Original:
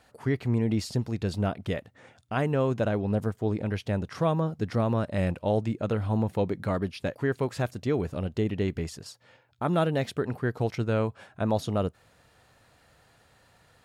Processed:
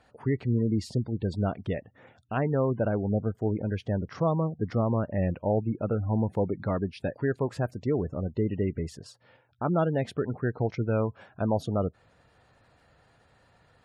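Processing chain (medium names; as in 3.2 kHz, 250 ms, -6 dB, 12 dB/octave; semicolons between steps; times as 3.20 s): spectral gate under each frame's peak -25 dB strong; treble shelf 2.3 kHz -6 dB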